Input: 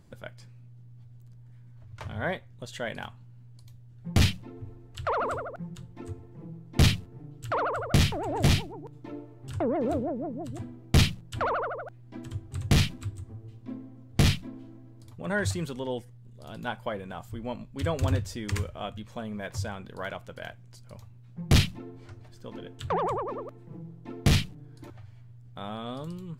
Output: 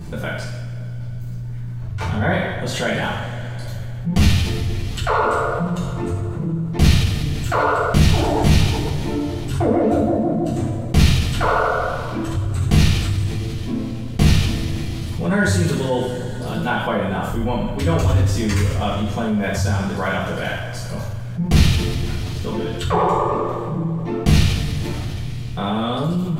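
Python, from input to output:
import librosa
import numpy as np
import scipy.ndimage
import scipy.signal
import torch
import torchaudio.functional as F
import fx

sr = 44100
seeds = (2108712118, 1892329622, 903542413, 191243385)

y = fx.low_shelf(x, sr, hz=120.0, db=7.5)
y = fx.rev_double_slope(y, sr, seeds[0], early_s=0.62, late_s=3.1, knee_db=-19, drr_db=-10.0)
y = fx.env_flatten(y, sr, amount_pct=50)
y = F.gain(torch.from_numpy(y), -7.5).numpy()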